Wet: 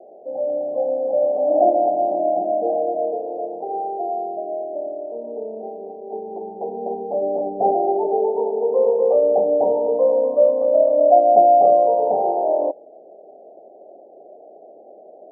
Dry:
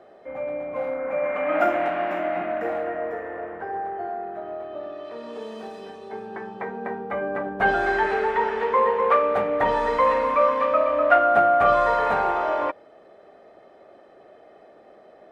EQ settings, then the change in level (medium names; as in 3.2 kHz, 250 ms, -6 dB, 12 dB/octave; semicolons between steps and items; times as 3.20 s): high-pass 340 Hz 12 dB/octave; steep low-pass 780 Hz 72 dB/octave; +7.5 dB